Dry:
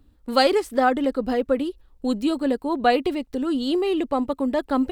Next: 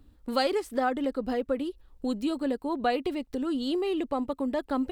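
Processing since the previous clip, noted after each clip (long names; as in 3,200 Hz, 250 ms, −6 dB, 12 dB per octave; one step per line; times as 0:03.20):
downward compressor 1.5 to 1, threshold −37 dBFS, peak gain reduction 8.5 dB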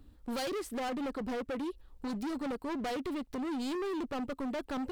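gain into a clipping stage and back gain 33.5 dB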